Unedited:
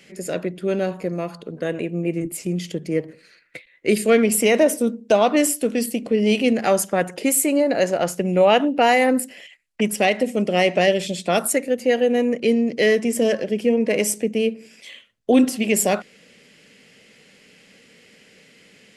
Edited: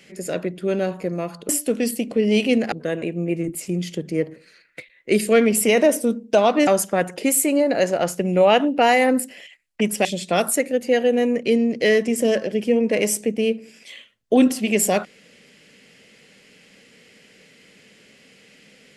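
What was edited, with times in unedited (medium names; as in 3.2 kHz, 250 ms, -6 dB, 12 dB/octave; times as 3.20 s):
5.44–6.67 s: move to 1.49 s
10.05–11.02 s: delete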